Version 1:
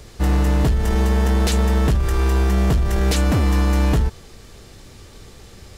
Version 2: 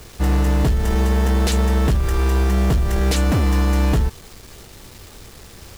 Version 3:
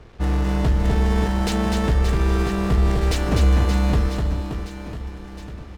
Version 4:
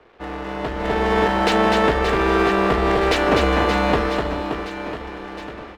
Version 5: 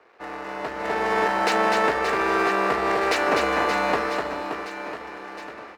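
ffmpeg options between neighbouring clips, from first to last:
-af "acrusher=bits=6:mix=0:aa=0.000001"
-af "adynamicsmooth=sensitivity=8:basefreq=1.5k,aecho=1:1:250|575|997.5|1547|2261:0.631|0.398|0.251|0.158|0.1,volume=-3.5dB"
-filter_complex "[0:a]acrossover=split=300 3600:gain=0.1 1 0.178[a][b][c];[a][b][c]amix=inputs=3:normalize=0,dynaudnorm=f=570:g=3:m=11.5dB"
-af "highpass=f=700:p=1,equalizer=f=3.3k:w=3.2:g=-8.5"

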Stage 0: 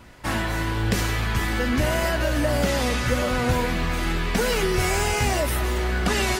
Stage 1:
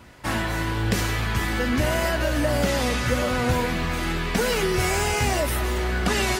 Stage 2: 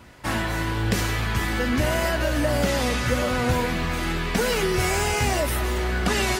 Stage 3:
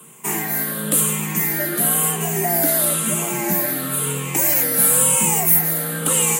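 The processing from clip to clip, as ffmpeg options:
-af "highpass=46"
-af anull
-af "afftfilt=real='re*pow(10,10/40*sin(2*PI*(0.66*log(max(b,1)*sr/1024/100)/log(2)-(-0.98)*(pts-256)/sr)))':imag='im*pow(10,10/40*sin(2*PI*(0.66*log(max(b,1)*sr/1024/100)/log(2)-(-0.98)*(pts-256)/sr)))':win_size=1024:overlap=0.75,aexciter=amount=6.4:drive=9.9:freq=7.5k,afreqshift=100,volume=-3dB"

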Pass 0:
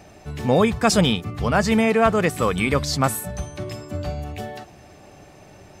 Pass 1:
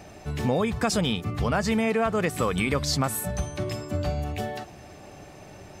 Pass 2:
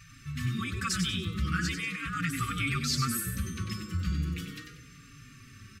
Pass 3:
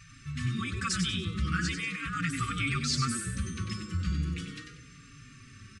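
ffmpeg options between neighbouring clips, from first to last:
-filter_complex "[0:a]asplit=2[a][b];[b]alimiter=limit=-15dB:level=0:latency=1:release=209,volume=0dB[c];[a][c]amix=inputs=2:normalize=0,acompressor=threshold=-16dB:ratio=4,volume=-5dB"
-filter_complex "[0:a]afftfilt=real='re*(1-between(b*sr/4096,200,1100))':imag='im*(1-between(b*sr/4096,200,1100))':win_size=4096:overlap=0.75,asplit=5[a][b][c][d][e];[b]adelay=95,afreqshift=100,volume=-7dB[f];[c]adelay=190,afreqshift=200,volume=-16.1dB[g];[d]adelay=285,afreqshift=300,volume=-25.2dB[h];[e]adelay=380,afreqshift=400,volume=-34.4dB[i];[a][f][g][h][i]amix=inputs=5:normalize=0,asplit=2[j][k];[k]adelay=4.5,afreqshift=-0.39[l];[j][l]amix=inputs=2:normalize=1"
-af "aresample=22050,aresample=44100"

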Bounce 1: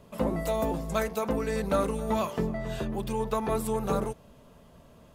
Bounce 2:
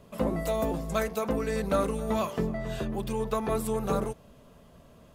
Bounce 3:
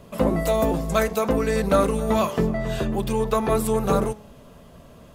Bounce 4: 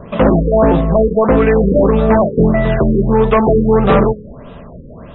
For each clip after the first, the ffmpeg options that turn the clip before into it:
-af "bandreject=f=900:w=19"
-af "bandreject=f=211.1:t=h:w=4,bandreject=f=422.2:t=h:w=4,bandreject=f=633.3:t=h:w=4,bandreject=f=844.4:t=h:w=4,bandreject=f=1.0555k:t=h:w=4,bandreject=f=1.2666k:t=h:w=4,bandreject=f=1.4777k:t=h:w=4,bandreject=f=1.6888k:t=h:w=4,bandreject=f=1.8999k:t=h:w=4,bandreject=f=2.111k:t=h:w=4,bandreject=f=2.3221k:t=h:w=4,bandreject=f=2.5332k:t=h:w=4,bandreject=f=2.7443k:t=h:w=4,bandreject=f=2.9554k:t=h:w=4,bandreject=f=3.1665k:t=h:w=4,bandreject=f=3.3776k:t=h:w=4,bandreject=f=3.5887k:t=h:w=4,bandreject=f=3.7998k:t=h:w=4,bandreject=f=4.0109k:t=h:w=4,bandreject=f=4.222k:t=h:w=4,bandreject=f=4.4331k:t=h:w=4,bandreject=f=4.6442k:t=h:w=4,bandreject=f=4.8553k:t=h:w=4,bandreject=f=5.0664k:t=h:w=4,bandreject=f=5.2775k:t=h:w=4,bandreject=f=5.4886k:t=h:w=4,bandreject=f=5.6997k:t=h:w=4,bandreject=f=5.9108k:t=h:w=4,bandreject=f=6.1219k:t=h:w=4,bandreject=f=6.333k:t=h:w=4,bandreject=f=6.5441k:t=h:w=4,bandreject=f=6.7552k:t=h:w=4,bandreject=f=6.9663k:t=h:w=4,bandreject=f=7.1774k:t=h:w=4,bandreject=f=7.3885k:t=h:w=4,bandreject=f=7.5996k:t=h:w=4,bandreject=f=7.8107k:t=h:w=4,bandreject=f=8.0218k:t=h:w=4,bandreject=f=8.2329k:t=h:w=4,bandreject=f=8.444k:t=h:w=4,volume=7.5dB"
-af "aeval=exprs='0.422*(cos(1*acos(clip(val(0)/0.422,-1,1)))-cos(1*PI/2))+0.106*(cos(5*acos(clip(val(0)/0.422,-1,1)))-cos(5*PI/2))':c=same,afftfilt=real='re*lt(b*sr/1024,530*pow(4000/530,0.5+0.5*sin(2*PI*1.6*pts/sr)))':imag='im*lt(b*sr/1024,530*pow(4000/530,0.5+0.5*sin(2*PI*1.6*pts/sr)))':win_size=1024:overlap=0.75,volume=6.5dB"

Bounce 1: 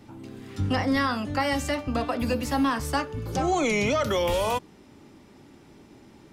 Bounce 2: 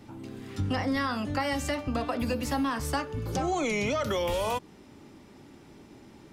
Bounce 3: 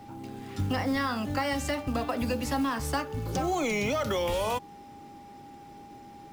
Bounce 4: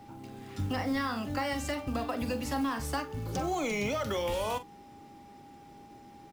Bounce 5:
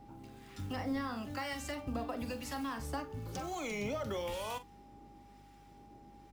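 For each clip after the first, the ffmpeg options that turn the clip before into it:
-af "acompressor=threshold=-27dB:ratio=2.5"
-af "aeval=exprs='val(0)+0.00447*sin(2*PI*810*n/s)':c=same,acrusher=bits=6:mode=log:mix=0:aa=0.000001"
-filter_complex "[0:a]asplit=2[a][b];[b]adelay=44,volume=-12dB[c];[a][c]amix=inputs=2:normalize=0,volume=-3.5dB"
-filter_complex "[0:a]acrossover=split=1000[a][b];[a]aeval=exprs='val(0)*(1-0.5/2+0.5/2*cos(2*PI*1*n/s))':c=same[c];[b]aeval=exprs='val(0)*(1-0.5/2-0.5/2*cos(2*PI*1*n/s))':c=same[d];[c][d]amix=inputs=2:normalize=0,aeval=exprs='val(0)+0.00141*(sin(2*PI*50*n/s)+sin(2*PI*2*50*n/s)/2+sin(2*PI*3*50*n/s)/3+sin(2*PI*4*50*n/s)/4+sin(2*PI*5*50*n/s)/5)':c=same,volume=-4dB"

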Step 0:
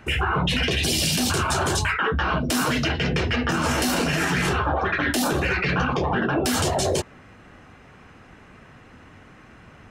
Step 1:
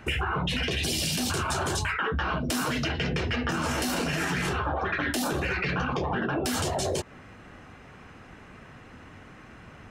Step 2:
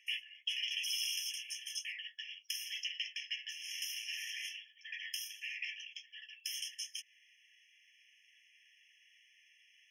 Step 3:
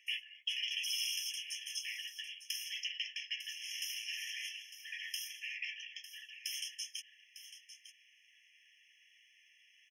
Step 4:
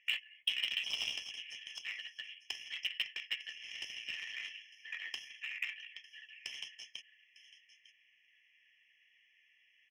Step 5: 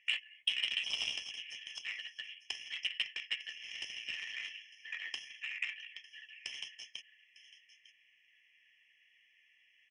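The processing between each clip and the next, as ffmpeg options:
-af "acompressor=threshold=-25dB:ratio=6"
-af "equalizer=f=1k:t=o:w=1:g=-10,equalizer=f=2k:t=o:w=1:g=-9,equalizer=f=4k:t=o:w=1:g=10,equalizer=f=8k:t=o:w=1:g=-8,afftfilt=real='re*eq(mod(floor(b*sr/1024/1700),2),1)':imag='im*eq(mod(floor(b*sr/1024/1700),2),1)':win_size=1024:overlap=0.75,volume=-4dB"
-af "aecho=1:1:902:0.237"
-af "adynamicsmooth=sensitivity=2:basefreq=2.1k,aeval=exprs='0.0398*(cos(1*acos(clip(val(0)/0.0398,-1,1)))-cos(1*PI/2))+0.00224*(cos(7*acos(clip(val(0)/0.0398,-1,1)))-cos(7*PI/2))':c=same,volume=9dB"
-af "aresample=22050,aresample=44100,volume=1dB"

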